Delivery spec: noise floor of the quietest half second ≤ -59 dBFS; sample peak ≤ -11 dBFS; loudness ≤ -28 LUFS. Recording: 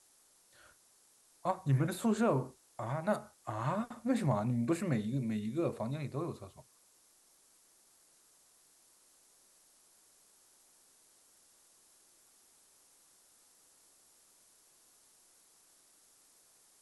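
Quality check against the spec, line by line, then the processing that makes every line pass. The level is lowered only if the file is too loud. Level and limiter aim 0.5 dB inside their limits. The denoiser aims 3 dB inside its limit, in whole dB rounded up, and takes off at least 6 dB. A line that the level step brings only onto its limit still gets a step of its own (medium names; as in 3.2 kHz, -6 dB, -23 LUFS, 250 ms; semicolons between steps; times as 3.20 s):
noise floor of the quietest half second -67 dBFS: pass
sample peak -17.5 dBFS: pass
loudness -35.0 LUFS: pass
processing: none needed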